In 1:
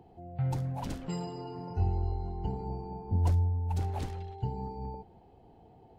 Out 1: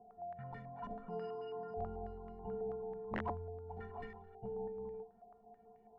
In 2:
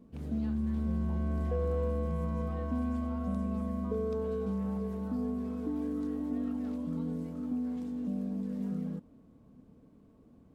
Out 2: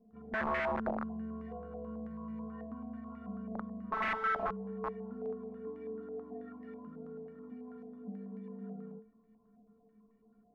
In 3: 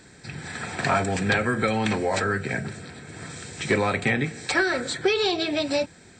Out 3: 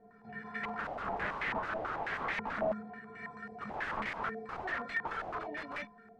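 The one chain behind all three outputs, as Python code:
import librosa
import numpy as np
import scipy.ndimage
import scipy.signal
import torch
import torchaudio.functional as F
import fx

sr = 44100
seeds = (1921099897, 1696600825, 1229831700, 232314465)

y = fx.stiff_resonator(x, sr, f0_hz=210.0, decay_s=0.32, stiffness=0.03)
y = (np.mod(10.0 ** (37.5 / 20.0) * y + 1.0, 2.0) - 1.0) / 10.0 ** (37.5 / 20.0)
y = fx.filter_held_lowpass(y, sr, hz=9.2, low_hz=700.0, high_hz=2000.0)
y = y * librosa.db_to_amplitude(4.0)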